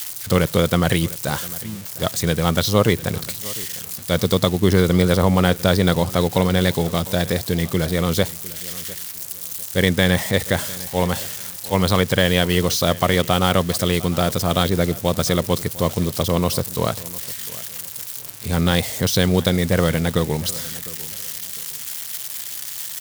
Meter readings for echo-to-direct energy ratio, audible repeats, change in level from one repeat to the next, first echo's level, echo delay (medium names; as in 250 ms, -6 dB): -19.0 dB, 2, -11.5 dB, -19.5 dB, 703 ms